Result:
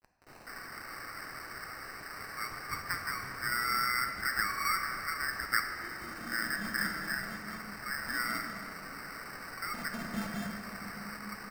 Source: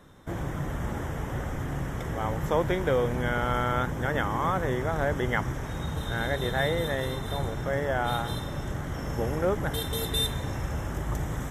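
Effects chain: median filter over 5 samples; in parallel at +2 dB: compressor 6:1, threshold -49 dBFS, peak gain reduction 26 dB; on the sum: reverb removal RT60 0.64 s; brick-wall FIR band-pass 1100–8500 Hz; requantised 8-bit, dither none; bands offset in time highs, lows 0.2 s, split 3700 Hz; sample-and-hold 13×; on a send at -3.5 dB: bell 6500 Hz +10 dB 0.26 oct + reverb RT60 2.9 s, pre-delay 3 ms

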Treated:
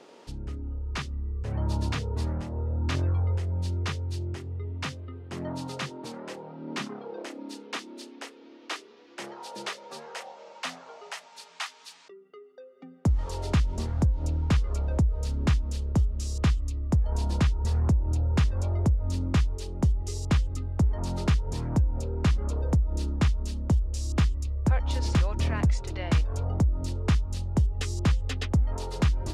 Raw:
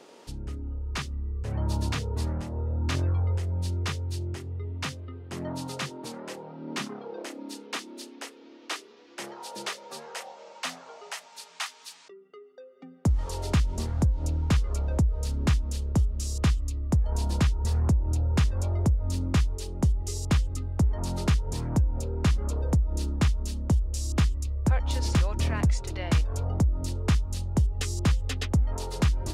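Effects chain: high shelf 8800 Hz -11.5 dB

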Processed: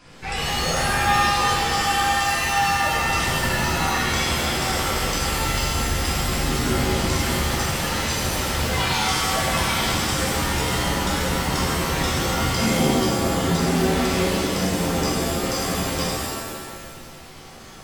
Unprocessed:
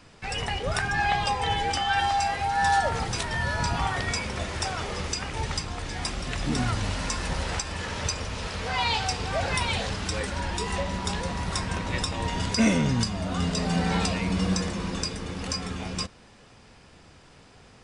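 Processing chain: compressor 3:1, threshold -30 dBFS, peak gain reduction 10 dB; shimmer reverb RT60 1.6 s, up +7 st, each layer -2 dB, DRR -7 dB

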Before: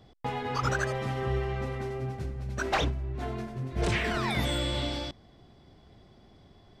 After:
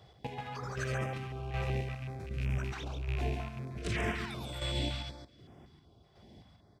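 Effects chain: rattling part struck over -35 dBFS, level -31 dBFS; HPF 55 Hz 24 dB/oct; limiter -26 dBFS, peak gain reduction 12 dB; chopper 1.3 Hz, depth 60%, duty 35%; on a send: feedback echo 0.138 s, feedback 16%, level -4 dB; on the sum: stepped notch 5.3 Hz 260–4200 Hz; gain +1 dB

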